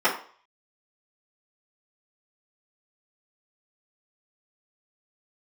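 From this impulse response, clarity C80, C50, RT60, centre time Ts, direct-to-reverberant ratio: 12.5 dB, 8.0 dB, 0.45 s, 23 ms, -12.0 dB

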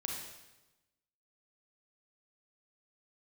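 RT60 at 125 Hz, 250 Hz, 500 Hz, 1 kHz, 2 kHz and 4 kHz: 1.2, 1.1, 1.1, 1.0, 0.95, 0.95 s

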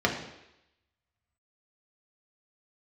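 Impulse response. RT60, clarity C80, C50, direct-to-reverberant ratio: 0.85 s, 9.5 dB, 7.0 dB, -1.0 dB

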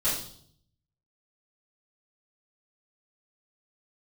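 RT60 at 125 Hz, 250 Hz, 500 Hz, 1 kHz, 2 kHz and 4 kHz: 1.0, 0.80, 0.65, 0.55, 0.50, 0.65 s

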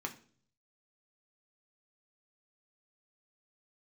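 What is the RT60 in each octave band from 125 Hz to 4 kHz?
0.90, 0.65, 0.55, 0.40, 0.40, 0.45 s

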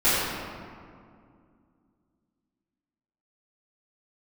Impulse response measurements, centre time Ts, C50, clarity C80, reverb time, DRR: 0.136 s, -3.0 dB, -1.0 dB, 2.3 s, -14.0 dB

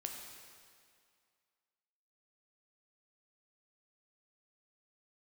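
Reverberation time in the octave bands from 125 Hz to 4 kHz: 1.9, 2.1, 2.1, 2.2, 2.1, 2.0 s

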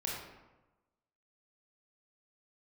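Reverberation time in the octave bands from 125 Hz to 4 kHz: 1.2, 1.1, 1.1, 1.1, 0.90, 0.65 s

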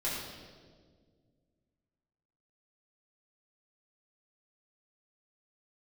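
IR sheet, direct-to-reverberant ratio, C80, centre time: -8.0 dB, 2.0 dB, 83 ms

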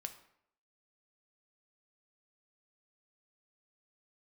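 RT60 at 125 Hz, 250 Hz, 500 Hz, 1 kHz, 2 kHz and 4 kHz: 0.65, 0.70, 0.75, 0.70, 0.60, 0.50 s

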